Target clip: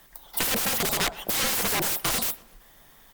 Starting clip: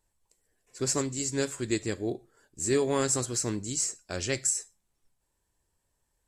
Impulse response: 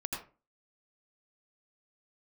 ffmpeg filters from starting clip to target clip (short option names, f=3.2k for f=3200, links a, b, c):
-filter_complex "[0:a]equalizer=f=63:t=o:w=0.44:g=-13.5,apsyclip=26.5dB,lowshelf=f=150:g=-8,aeval=exprs='(mod(2.82*val(0)+1,2)-1)/2.82':c=same,acompressor=threshold=-24dB:ratio=4,asplit=2[a][b];[b]adelay=237,lowpass=f=1.4k:p=1,volume=-18.5dB,asplit=2[c][d];[d]adelay=237,lowpass=f=1.4k:p=1,volume=0.46,asplit=2[e][f];[f]adelay=237,lowpass=f=1.4k:p=1,volume=0.46,asplit=2[g][h];[h]adelay=237,lowpass=f=1.4k:p=1,volume=0.46[i];[c][e][g][i]amix=inputs=4:normalize=0[j];[a][j]amix=inputs=2:normalize=0,asetrate=88200,aresample=44100,afreqshift=-42"